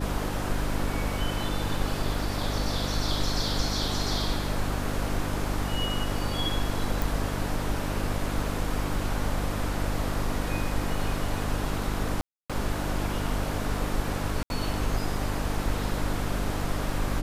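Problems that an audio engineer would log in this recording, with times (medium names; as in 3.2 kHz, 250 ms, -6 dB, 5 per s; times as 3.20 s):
hum 50 Hz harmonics 6 -32 dBFS
7.02 s: pop
12.21–12.50 s: dropout 286 ms
14.43–14.50 s: dropout 71 ms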